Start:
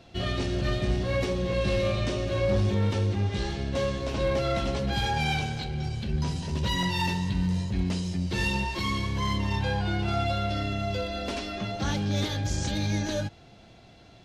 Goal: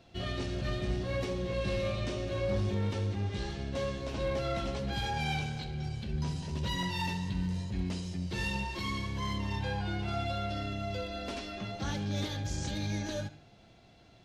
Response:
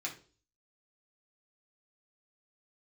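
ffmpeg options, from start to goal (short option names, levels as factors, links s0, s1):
-filter_complex "[0:a]asplit=2[s0][s1];[1:a]atrim=start_sample=2205,adelay=66[s2];[s1][s2]afir=irnorm=-1:irlink=0,volume=0.178[s3];[s0][s3]amix=inputs=2:normalize=0,volume=0.473"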